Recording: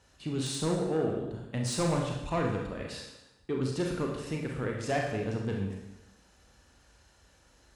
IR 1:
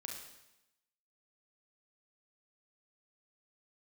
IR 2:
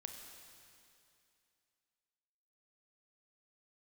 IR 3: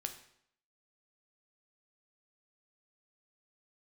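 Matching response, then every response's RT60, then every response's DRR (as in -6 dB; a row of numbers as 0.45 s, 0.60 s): 1; 0.90 s, 2.6 s, 0.70 s; 0.0 dB, 3.5 dB, 6.0 dB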